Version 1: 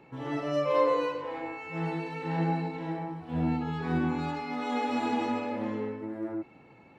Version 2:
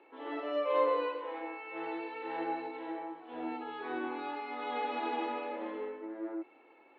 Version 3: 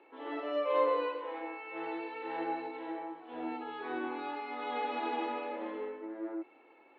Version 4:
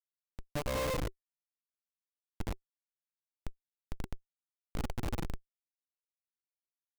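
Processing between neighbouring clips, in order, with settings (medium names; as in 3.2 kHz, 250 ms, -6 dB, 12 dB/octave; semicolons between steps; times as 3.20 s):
elliptic band-pass 330–3600 Hz, stop band 40 dB; trim -3 dB
no audible change
local Wiener filter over 9 samples; Schmitt trigger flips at -28.5 dBFS; band-stop 380 Hz, Q 12; trim +4.5 dB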